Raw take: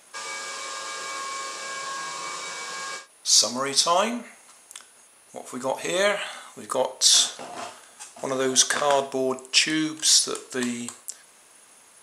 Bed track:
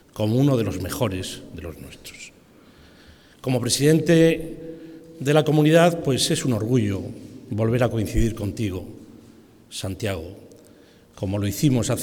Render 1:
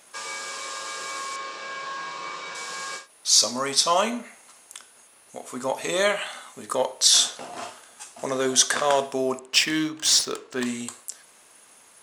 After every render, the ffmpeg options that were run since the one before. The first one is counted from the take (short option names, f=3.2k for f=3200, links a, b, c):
-filter_complex "[0:a]asettb=1/sr,asplit=3[a][b][c];[a]atrim=end=1.364[d];[b]atrim=start=1.36:end=2.55,asetpts=PTS-STARTPTS,afade=t=in:d=0.004:c=qsin,afade=t=out:st=1.186:d=0.004:c=qsin,highpass=120,lowpass=4.1k[e];[c]atrim=start=2.546[f];[d][e]acrossfade=d=0.004:c1=hsin:c2=qsin[g];[g][f]acrossfade=d=0.004:c1=qsin:c2=hsin,asettb=1/sr,asplit=3[h][i][j];[h]atrim=end=9.394[k];[i]atrim=start=9.39:end=10.66,asetpts=PTS-STARTPTS,afade=t=in:d=0.004:c=qsin,afade=t=out:st=1.266:d=0.004:c=qsin,adynamicsmooth=sensitivity=5.5:basefreq=3k[l];[j]atrim=start=10.656[m];[k][l]acrossfade=d=0.004:c1=hsin:c2=qsin[n];[n][m]acrossfade=d=0.004:c1=qsin:c2=hsin"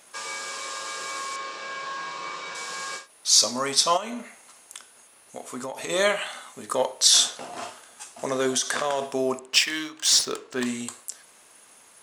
-filter_complex "[0:a]asplit=3[a][b][c];[a]afade=t=out:st=3.96:d=0.02[d];[b]acompressor=threshold=-28dB:ratio=16:attack=3.2:release=140:knee=1:detection=peak,afade=t=in:st=3.96:d=0.02,afade=t=out:st=5.89:d=0.02[e];[c]afade=t=in:st=5.89:d=0.02[f];[d][e][f]amix=inputs=3:normalize=0,asettb=1/sr,asplit=3[g][h][i];[g]atrim=end=8.574[j];[h]atrim=start=8.57:end=9.02,asetpts=PTS-STARTPTS,afade=t=in:d=0.004:c=qsin,afade=t=out:st=0.446:d=0.004:c=qsin,acompressor=threshold=-21dB:ratio=5:attack=3.2:release=140:knee=1:detection=peak[k];[i]atrim=start=9.016[l];[j][k]acrossfade=d=0.004:c1=hsin:c2=qsin[m];[m][l]acrossfade=d=0.004:c1=qsin:c2=hsin,asettb=1/sr,asplit=3[n][o][p];[n]atrim=end=9.584[q];[o]atrim=start=9.58:end=10.13,asetpts=PTS-STARTPTS,afade=t=in:d=0.004:c=qsin,afade=t=out:st=0.546:d=0.004:c=qsin,highpass=f=840:p=1[r];[p]atrim=start=10.126[s];[q][r]acrossfade=d=0.004:c1=hsin:c2=qsin[t];[t][s]acrossfade=d=0.004:c1=qsin:c2=hsin"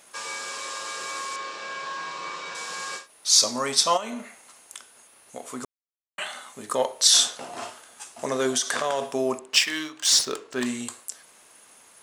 -filter_complex "[0:a]asplit=3[a][b][c];[a]atrim=end=5.65,asetpts=PTS-STARTPTS,afade=t=out:st=5.646:d=0.004:c=hsin[d];[b]atrim=start=5.65:end=6.18,asetpts=PTS-STARTPTS,volume=0[e];[c]atrim=start=6.18,asetpts=PTS-STARTPTS,afade=t=in:d=0.004:c=hsin[f];[d][e][f]concat=n=3:v=0:a=1"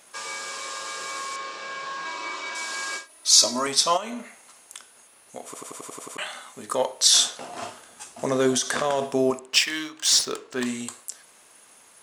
-filter_complex "[0:a]asettb=1/sr,asplit=3[a][b][c];[a]atrim=end=2.054[d];[b]atrim=start=2.05:end=3.67,asetpts=PTS-STARTPTS,afade=t=in:d=0.004:c=qsin,afade=t=out:st=1.616:d=0.004:c=qsin,aecho=1:1:3.1:0.81,atrim=end_sample=71442[e];[c]atrim=start=3.666[f];[d][e]acrossfade=d=0.004:c1=hsin:c2=qsin[g];[g][f]acrossfade=d=0.004:c1=qsin:c2=hsin,asettb=1/sr,asplit=3[h][i][j];[h]atrim=end=7.624[k];[i]atrim=start=7.62:end=9.31,asetpts=PTS-STARTPTS,afade=t=in:d=0.004:c=qsin,afade=t=out:st=1.686:d=0.004:c=qsin,lowshelf=f=370:g=8[l];[j]atrim=start=9.306[m];[k][l]acrossfade=d=0.004:c1=hsin:c2=qsin[n];[n][m]acrossfade=d=0.004:c1=qsin:c2=hsin,asplit=9[o][p][q][r][s][t][u][v][w];[o]atrim=end=5.542[x];[p]atrim=start=5.448:end=5.542[y];[q]atrim=start=5.448:end=5.542[z];[r]atrim=start=5.448:end=5.542[aa];[s]atrim=start=5.448:end=5.542[ab];[t]atrim=start=5.448:end=5.542[ac];[u]atrim=start=5.448:end=5.542[ad];[v]atrim=start=5.448:end=5.542[ae];[w]atrim=start=6.168[af];[x][y]acrossfade=d=0.004:c1=hsin:c2=hsin[ag];[ag][z]acrossfade=d=0.004:c1=hsin:c2=hsin[ah];[ah][aa]acrossfade=d=0.004:c1=hsin:c2=hsin[ai];[ai][ab]acrossfade=d=0.004:c1=hsin:c2=hsin[aj];[aj][ac]acrossfade=d=0.004:c1=hsin:c2=hsin[ak];[ak][ad]acrossfade=d=0.004:c1=hsin:c2=hsin[al];[al][ae]acrossfade=d=0.004:c1=hsin:c2=hsin[am];[am][af]acrossfade=d=0.004:c1=hsin:c2=hsin"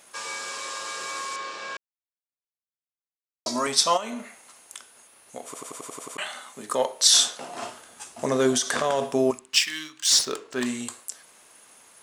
-filter_complex "[0:a]asettb=1/sr,asplit=3[a][b][c];[a]atrim=end=6.264[d];[b]atrim=start=6.26:end=7.72,asetpts=PTS-STARTPTS,afade=t=in:d=0.004:c=qsin,afade=t=out:st=1.456:d=0.004:c=qsin,highpass=f=120:w=0.5412,highpass=f=120:w=1.3066[e];[c]atrim=start=7.716[f];[d][e]acrossfade=d=0.004:c1=hsin:c2=qsin[g];[g][f]acrossfade=d=0.004:c1=qsin:c2=hsin,asettb=1/sr,asplit=3[h][i][j];[h]atrim=end=9.314[k];[i]atrim=start=9.31:end=10.11,asetpts=PTS-STARTPTS,afade=t=in:d=0.004:c=qsin,afade=t=out:st=0.796:d=0.004:c=qsin,equalizer=f=560:t=o:w=2:g=-14.5[l];[j]atrim=start=10.106[m];[k][l]acrossfade=d=0.004:c1=hsin:c2=qsin[n];[n][m]acrossfade=d=0.004:c1=qsin:c2=hsin,asplit=3[o][p][q];[o]atrim=end=1.77,asetpts=PTS-STARTPTS,afade=t=out:st=1.766:d=0.004:c=hsin[r];[p]atrim=start=1.77:end=3.46,asetpts=PTS-STARTPTS,volume=0[s];[q]atrim=start=3.46,asetpts=PTS-STARTPTS,afade=t=in:d=0.004:c=hsin[t];[r][s][t]concat=n=3:v=0:a=1"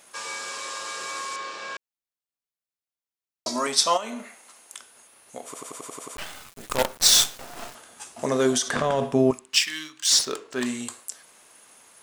-filter_complex "[0:a]asettb=1/sr,asplit=3[a][b][c];[a]atrim=end=3.494[d];[b]atrim=start=3.49:end=4.77,asetpts=PTS-STARTPTS,afade=t=in:d=0.004:c=qsin,afade=t=out:st=1.276:d=0.004:c=qsin,highpass=170[e];[c]atrim=start=4.766[f];[d][e]acrossfade=d=0.004:c1=hsin:c2=qsin[g];[g][f]acrossfade=d=0.004:c1=qsin:c2=hsin,asettb=1/sr,asplit=3[h][i][j];[h]atrim=end=6.164[k];[i]atrim=start=6.16:end=7.75,asetpts=PTS-STARTPTS,afade=t=in:d=0.004:c=qsin,afade=t=out:st=1.586:d=0.004:c=qsin,acrusher=bits=4:dc=4:mix=0:aa=0.000001[l];[j]atrim=start=7.746[m];[k][l]acrossfade=d=0.004:c1=hsin:c2=qsin[n];[n][m]acrossfade=d=0.004:c1=qsin:c2=hsin,asettb=1/sr,asplit=3[o][p][q];[o]atrim=end=8.684[r];[p]atrim=start=8.68:end=9.33,asetpts=PTS-STARTPTS,afade=t=in:d=0.004:c=qsin,afade=t=out:st=0.646:d=0.004:c=qsin,bass=f=250:g=10,treble=f=4k:g=-7[s];[q]atrim=start=9.326[t];[r][s]acrossfade=d=0.004:c1=hsin:c2=qsin[u];[u][t]acrossfade=d=0.004:c1=qsin:c2=hsin"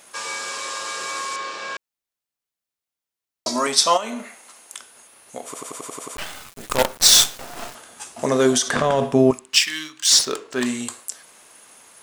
-af "volume=4.5dB,alimiter=limit=-1dB:level=0:latency=1"